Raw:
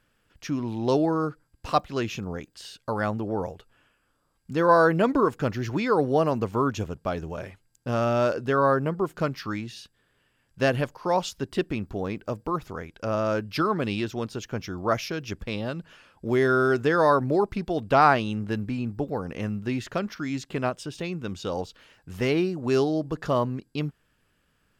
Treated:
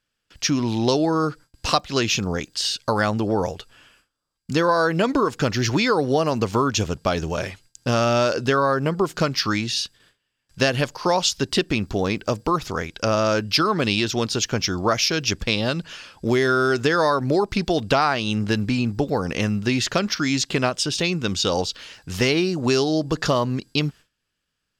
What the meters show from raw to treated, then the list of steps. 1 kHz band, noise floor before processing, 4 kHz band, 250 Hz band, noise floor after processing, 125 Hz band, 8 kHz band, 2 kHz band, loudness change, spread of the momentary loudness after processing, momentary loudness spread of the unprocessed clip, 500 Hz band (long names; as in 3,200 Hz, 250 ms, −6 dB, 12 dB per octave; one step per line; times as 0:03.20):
+2.0 dB, −70 dBFS, +15.0 dB, +4.5 dB, −78 dBFS, +5.0 dB, +16.5 dB, +6.0 dB, +4.0 dB, 6 LU, 13 LU, +3.0 dB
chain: parametric band 5,100 Hz +12.5 dB 1.9 octaves
downward compressor 6 to 1, threshold −24 dBFS, peak gain reduction 12.5 dB
noise gate with hold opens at −52 dBFS
level +8 dB